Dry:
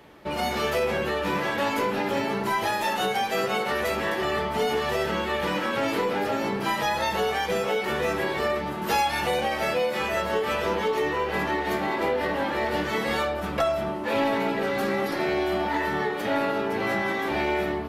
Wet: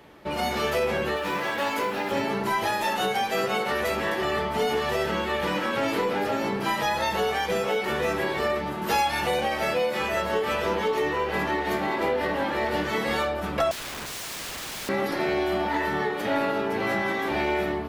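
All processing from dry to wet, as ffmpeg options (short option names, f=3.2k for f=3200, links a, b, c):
-filter_complex "[0:a]asettb=1/sr,asplit=3[a][b][c];[a]atrim=end=1.164[d];[b]atrim=start=1.16:end=2.12,asetpts=PTS-STARTPTS,afade=t=in:d=0.004:c=qsin,afade=t=out:st=0.956:d=0.004:c=qsin,lowshelf=f=300:g=-8,acrusher=bits=7:mode=log:mix=0:aa=0.000001[e];[c]atrim=start=2.116[f];[d][e]acrossfade=d=0.004:c1=hsin:c2=qsin[g];[g][f]acrossfade=d=0.004:c1=qsin:c2=hsin,asettb=1/sr,asplit=3[h][i][j];[h]atrim=end=13.714[k];[i]atrim=start=13.71:end=14.89,asetpts=PTS-STARTPTS,afade=t=in:d=0.004:c=qsin,afade=t=out:st=1.176:d=0.004:c=qsin,highshelf=f=3.1k:g=-12,aeval=exprs='(mod(33.5*val(0)+1,2)-1)/33.5':c=same[l];[j]atrim=start=14.886[m];[k][l]acrossfade=d=0.004:c1=hsin:c2=qsin[n];[n][m]acrossfade=d=0.004:c1=qsin:c2=hsin"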